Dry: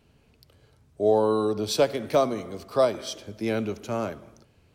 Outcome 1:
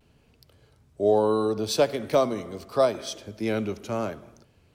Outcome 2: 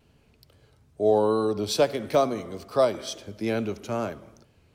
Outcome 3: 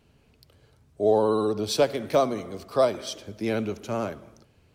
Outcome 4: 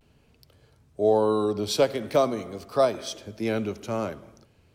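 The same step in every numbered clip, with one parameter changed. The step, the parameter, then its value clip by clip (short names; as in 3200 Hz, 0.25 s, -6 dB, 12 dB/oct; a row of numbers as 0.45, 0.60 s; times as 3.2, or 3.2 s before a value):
vibrato, rate: 0.74, 2.3, 16, 0.43 Hz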